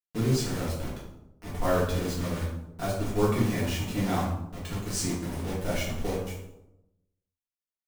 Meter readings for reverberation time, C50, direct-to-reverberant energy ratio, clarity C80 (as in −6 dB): 0.90 s, 2.5 dB, −8.5 dB, 5.5 dB